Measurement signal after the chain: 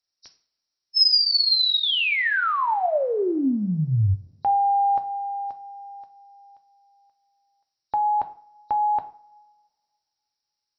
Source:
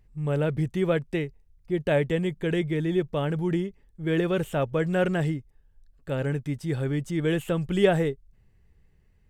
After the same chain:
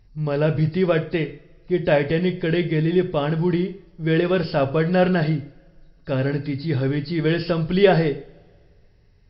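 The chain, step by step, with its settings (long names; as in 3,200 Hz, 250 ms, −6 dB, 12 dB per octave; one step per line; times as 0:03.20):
hearing-aid frequency compression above 3,700 Hz 4 to 1
coupled-rooms reverb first 0.42 s, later 2 s, from −25 dB, DRR 7 dB
level +5 dB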